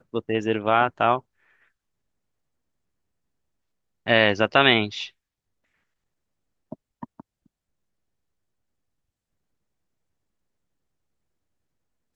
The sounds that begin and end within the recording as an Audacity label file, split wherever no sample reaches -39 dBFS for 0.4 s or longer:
4.070000	5.080000	sound
6.720000	7.200000	sound